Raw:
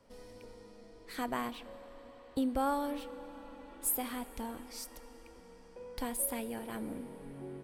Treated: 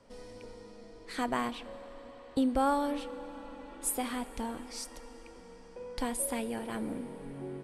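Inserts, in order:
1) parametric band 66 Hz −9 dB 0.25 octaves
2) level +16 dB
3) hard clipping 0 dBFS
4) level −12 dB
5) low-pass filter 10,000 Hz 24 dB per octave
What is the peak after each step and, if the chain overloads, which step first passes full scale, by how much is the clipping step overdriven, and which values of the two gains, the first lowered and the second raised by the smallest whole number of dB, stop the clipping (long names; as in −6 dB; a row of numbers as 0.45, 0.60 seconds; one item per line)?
−20.5, −4.5, −4.5, −16.5, −16.5 dBFS
no step passes full scale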